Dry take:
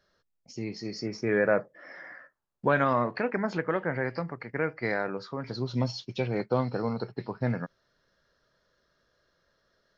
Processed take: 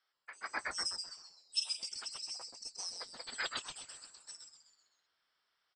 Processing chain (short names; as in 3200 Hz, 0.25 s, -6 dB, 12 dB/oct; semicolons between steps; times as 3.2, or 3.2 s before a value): four-band scrambler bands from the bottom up 4321; HPF 360 Hz 12 dB/oct; on a send: frequency-shifting echo 0.223 s, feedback 42%, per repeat -150 Hz, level -5 dB; on the sum: speed mistake 45 rpm record played at 78 rpm; LPF 3900 Hz 24 dB/oct; upward expander 1.5:1, over -60 dBFS; gain +9.5 dB